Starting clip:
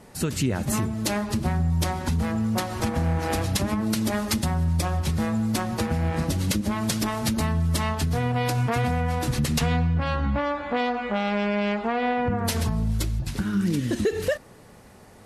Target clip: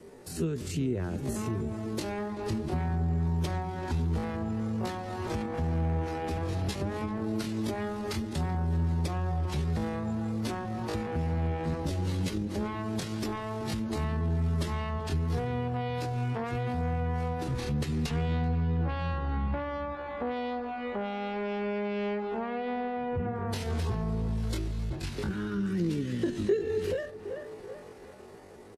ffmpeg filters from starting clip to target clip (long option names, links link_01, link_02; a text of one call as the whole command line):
ffmpeg -i in.wav -filter_complex "[0:a]acrossover=split=640|5000[link_01][link_02][link_03];[link_02]dynaudnorm=framelen=390:gausssize=5:maxgain=7dB[link_04];[link_01][link_04][link_03]amix=inputs=3:normalize=0,adynamicequalizer=threshold=0.0178:dfrequency=810:dqfactor=5.3:tfrequency=810:tqfactor=5.3:attack=5:release=100:ratio=0.375:range=1.5:mode=boostabove:tftype=bell,atempo=0.53,lowpass=12000,asplit=2[link_05][link_06];[link_06]adelay=12,volume=-14dB[link_07];[link_05][link_07]amix=inputs=2:normalize=0,asplit=2[link_08][link_09];[link_09]adelay=381,lowpass=frequency=1500:poles=1,volume=-15dB,asplit=2[link_10][link_11];[link_11]adelay=381,lowpass=frequency=1500:poles=1,volume=0.4,asplit=2[link_12][link_13];[link_13]adelay=381,lowpass=frequency=1500:poles=1,volume=0.4,asplit=2[link_14][link_15];[link_15]adelay=381,lowpass=frequency=1500:poles=1,volume=0.4[link_16];[link_10][link_12][link_14][link_16]amix=inputs=4:normalize=0[link_17];[link_08][link_17]amix=inputs=2:normalize=0,acrossover=split=200[link_18][link_19];[link_19]acompressor=threshold=-34dB:ratio=3[link_20];[link_18][link_20]amix=inputs=2:normalize=0,asoftclip=type=tanh:threshold=-14dB,equalizer=frequency=390:width_type=o:width=0.75:gain=13,volume=-5.5dB" -ar 44100 -c:a libmp3lame -b:a 96k out.mp3